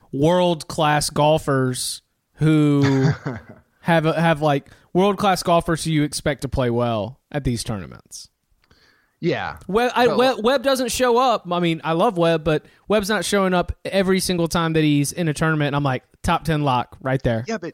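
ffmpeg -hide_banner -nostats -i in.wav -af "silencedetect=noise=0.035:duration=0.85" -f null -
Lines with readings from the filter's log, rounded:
silence_start: 8.22
silence_end: 9.22 | silence_duration: 1.01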